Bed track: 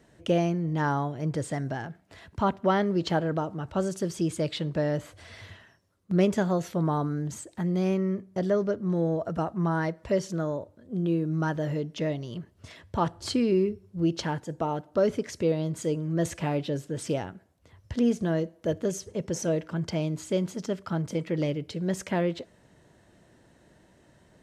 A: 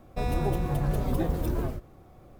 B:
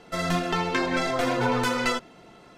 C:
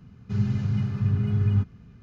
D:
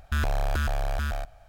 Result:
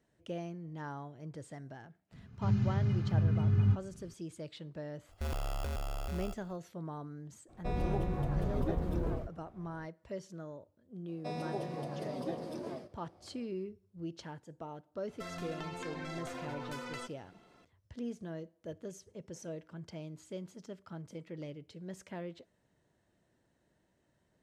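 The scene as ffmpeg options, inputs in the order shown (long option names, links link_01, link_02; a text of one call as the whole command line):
ffmpeg -i bed.wav -i cue0.wav -i cue1.wav -i cue2.wav -i cue3.wav -filter_complex "[1:a]asplit=2[link_01][link_02];[0:a]volume=-16dB[link_03];[4:a]acrusher=samples=22:mix=1:aa=0.000001[link_04];[link_01]aemphasis=mode=reproduction:type=50fm[link_05];[link_02]highpass=frequency=170:width=0.5412,highpass=frequency=170:width=1.3066,equalizer=frequency=600:width_type=q:width=4:gain=7,equalizer=frequency=1400:width_type=q:width=4:gain=-5,equalizer=frequency=4900:width_type=q:width=4:gain=10,equalizer=frequency=7200:width_type=q:width=4:gain=-6,lowpass=frequency=9600:width=0.5412,lowpass=frequency=9600:width=1.3066[link_06];[2:a]acompressor=threshold=-27dB:ratio=6:attack=3.2:release=140:knee=1:detection=peak[link_07];[3:a]atrim=end=2.02,asetpts=PTS-STARTPTS,volume=-5dB,afade=type=in:duration=0.004:curve=hsin,afade=type=out:start_time=2.016:duration=0.004:curve=hsin,adelay=2120[link_08];[link_04]atrim=end=1.48,asetpts=PTS-STARTPTS,volume=-10.5dB,afade=type=in:duration=0.004:curve=hsin,afade=type=out:start_time=1.476:duration=0.004:curve=hsin,adelay=224469S[link_09];[link_05]atrim=end=2.39,asetpts=PTS-STARTPTS,volume=-6.5dB,afade=type=in:duration=0.02,afade=type=out:start_time=2.37:duration=0.02,adelay=7480[link_10];[link_06]atrim=end=2.39,asetpts=PTS-STARTPTS,volume=-9dB,afade=type=in:duration=0.004:curve=hsin,afade=type=out:start_time=2.386:duration=0.004:curve=hsin,adelay=11080[link_11];[link_07]atrim=end=2.57,asetpts=PTS-STARTPTS,volume=-12dB,afade=type=in:duration=0.004:curve=hsin,afade=type=out:start_time=2.566:duration=0.004:curve=hsin,adelay=665028S[link_12];[link_03][link_08][link_09][link_10][link_11][link_12]amix=inputs=6:normalize=0" out.wav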